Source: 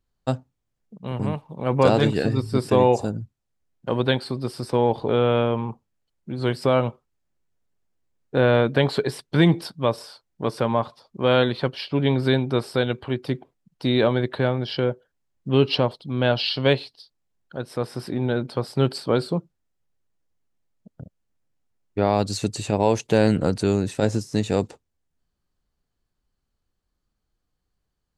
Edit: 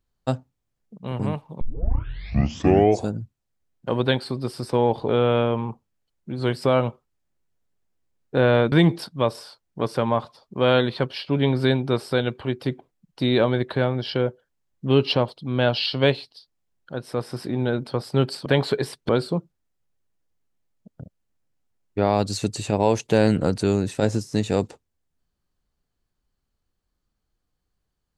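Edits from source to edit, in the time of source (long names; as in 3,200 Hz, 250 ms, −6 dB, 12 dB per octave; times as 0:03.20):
0:01.61: tape start 1.49 s
0:08.72–0:09.35: move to 0:19.09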